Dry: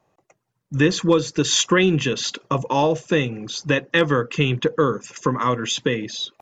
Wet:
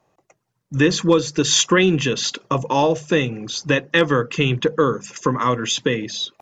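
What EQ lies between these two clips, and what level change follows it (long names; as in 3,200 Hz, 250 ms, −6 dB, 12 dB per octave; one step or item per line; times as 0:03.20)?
parametric band 5,500 Hz +2 dB
mains-hum notches 50/100/150/200 Hz
+1.5 dB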